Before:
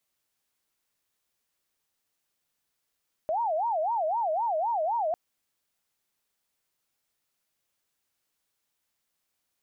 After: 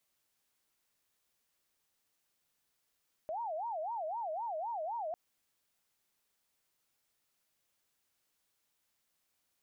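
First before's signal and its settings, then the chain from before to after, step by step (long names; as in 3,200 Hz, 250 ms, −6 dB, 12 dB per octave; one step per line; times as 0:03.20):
siren wail 616–949 Hz 3.9 per second sine −24.5 dBFS 1.85 s
brickwall limiter −35 dBFS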